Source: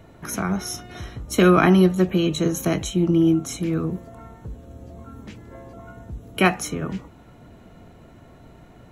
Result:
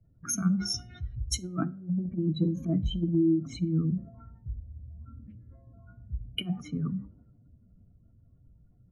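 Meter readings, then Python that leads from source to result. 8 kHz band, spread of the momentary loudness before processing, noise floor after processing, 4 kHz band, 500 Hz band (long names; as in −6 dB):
−4.5 dB, 23 LU, −61 dBFS, −5.5 dB, −15.5 dB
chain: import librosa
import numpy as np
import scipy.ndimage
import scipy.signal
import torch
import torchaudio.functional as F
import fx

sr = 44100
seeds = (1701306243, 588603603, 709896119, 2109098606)

y = fx.spec_expand(x, sr, power=2.3)
y = fx.env_lowpass_down(y, sr, base_hz=550.0, full_db=-15.5)
y = fx.band_shelf(y, sr, hz=540.0, db=-10.0, octaves=1.7)
y = fx.over_compress(y, sr, threshold_db=-23.0, ratio=-0.5)
y = fx.hum_notches(y, sr, base_hz=50, count=5)
y = fx.dmg_buzz(y, sr, base_hz=100.0, harmonics=6, level_db=-56.0, tilt_db=-6, odd_only=False)
y = fx.rev_plate(y, sr, seeds[0], rt60_s=0.55, hf_ratio=0.6, predelay_ms=0, drr_db=18.0)
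y = fx.band_widen(y, sr, depth_pct=70)
y = y * librosa.db_to_amplitude(-3.5)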